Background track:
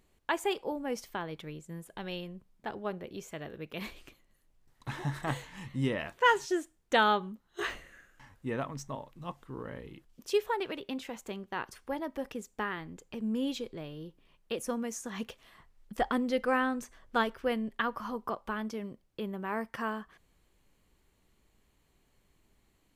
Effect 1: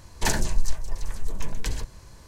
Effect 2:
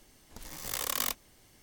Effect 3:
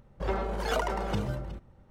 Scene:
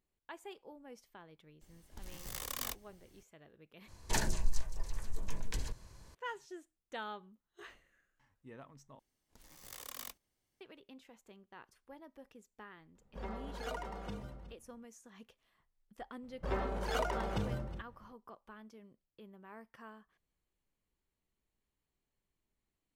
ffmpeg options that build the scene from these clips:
ffmpeg -i bed.wav -i cue0.wav -i cue1.wav -i cue2.wav -filter_complex "[2:a]asplit=2[link_01][link_02];[3:a]asplit=2[link_03][link_04];[0:a]volume=-18dB[link_05];[link_01]lowshelf=frequency=130:gain=11.5[link_06];[link_02]agate=range=-9dB:threshold=-53dB:ratio=16:release=100:detection=peak[link_07];[link_03]aecho=1:1:4.2:0.39[link_08];[link_05]asplit=3[link_09][link_10][link_11];[link_09]atrim=end=3.884[link_12];[1:a]atrim=end=2.27,asetpts=PTS-STARTPTS,volume=-9dB[link_13];[link_10]atrim=start=6.146:end=8.994[link_14];[link_07]atrim=end=1.62,asetpts=PTS-STARTPTS,volume=-15dB[link_15];[link_11]atrim=start=10.606[link_16];[link_06]atrim=end=1.62,asetpts=PTS-STARTPTS,volume=-9dB,afade=type=in:duration=0.004:curve=hsin,afade=type=out:start_time=1.616:duration=0.004:curve=hsin,adelay=1610[link_17];[link_08]atrim=end=1.9,asetpts=PTS-STARTPTS,volume=-13.5dB,afade=type=in:duration=0.004:curve=hsin,afade=type=out:start_time=1.896:duration=0.004:curve=hsin,adelay=12950[link_18];[link_04]atrim=end=1.9,asetpts=PTS-STARTPTS,volume=-5.5dB,afade=type=in:duration=0.004:curve=hsin,afade=type=out:start_time=1.896:duration=0.004:curve=hsin,adelay=16230[link_19];[link_12][link_13]acrossfade=duration=0.004:curve1=hsin:curve2=hsin[link_20];[link_20][link_14]acrossfade=duration=0.004:curve1=hsin:curve2=hsin[link_21];[link_21][link_15]acrossfade=duration=0.004:curve1=hsin:curve2=hsin[link_22];[link_22][link_16]acrossfade=duration=0.004:curve1=hsin:curve2=hsin[link_23];[link_23][link_17][link_18][link_19]amix=inputs=4:normalize=0" out.wav

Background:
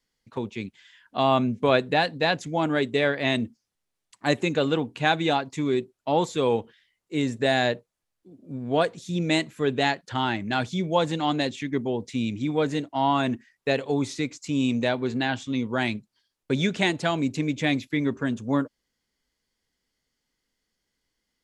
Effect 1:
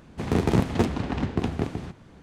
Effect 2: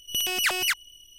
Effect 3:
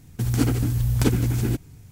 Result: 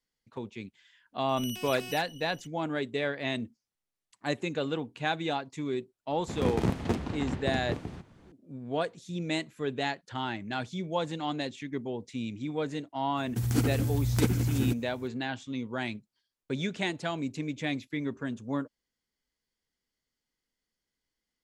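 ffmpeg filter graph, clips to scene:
ffmpeg -i bed.wav -i cue0.wav -i cue1.wav -i cue2.wav -filter_complex "[0:a]volume=-8dB[link_01];[2:a]acompressor=threshold=-33dB:ratio=6:attack=3.2:release=140:knee=1:detection=peak[link_02];[3:a]highpass=69[link_03];[link_02]atrim=end=1.18,asetpts=PTS-STARTPTS,volume=-4dB,afade=type=in:duration=0.004:curve=hsin,afade=type=out:start_time=1.176:duration=0.004:curve=hsin,adelay=1290[link_04];[1:a]atrim=end=2.22,asetpts=PTS-STARTPTS,volume=-6.5dB,afade=type=in:duration=0.004:curve=hsin,afade=type=out:start_time=2.216:duration=0.004:curve=hsin,adelay=269010S[link_05];[link_03]atrim=end=1.91,asetpts=PTS-STARTPTS,volume=-5dB,afade=type=in:duration=0.004:curve=hsin,afade=type=out:start_time=1.906:duration=0.004:curve=hsin,adelay=13170[link_06];[link_01][link_04][link_05][link_06]amix=inputs=4:normalize=0" out.wav

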